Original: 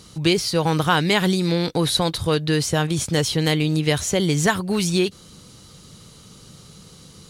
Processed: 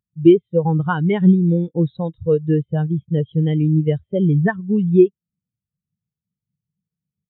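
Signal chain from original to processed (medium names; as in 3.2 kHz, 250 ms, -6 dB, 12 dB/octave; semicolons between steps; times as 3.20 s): resampled via 8 kHz; spectral contrast expander 2.5:1; trim +2.5 dB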